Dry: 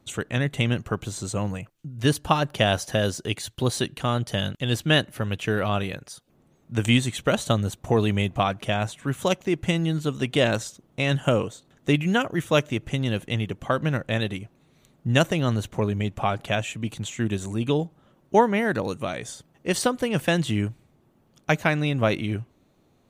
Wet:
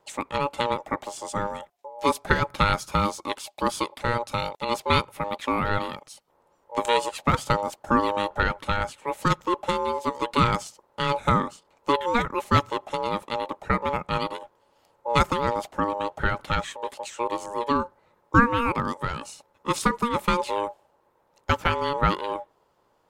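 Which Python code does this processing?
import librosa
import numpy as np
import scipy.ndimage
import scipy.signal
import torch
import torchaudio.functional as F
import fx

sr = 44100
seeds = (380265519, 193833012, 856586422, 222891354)

y = fx.dynamic_eq(x, sr, hz=570.0, q=0.88, threshold_db=-36.0, ratio=4.0, max_db=6)
y = y * np.sin(2.0 * np.pi * 710.0 * np.arange(len(y)) / sr)
y = F.gain(torch.from_numpy(y), -1.0).numpy()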